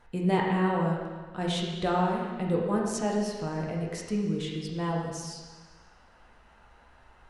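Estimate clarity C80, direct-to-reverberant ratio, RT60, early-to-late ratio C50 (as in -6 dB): 3.5 dB, -2.5 dB, 1.5 s, 1.5 dB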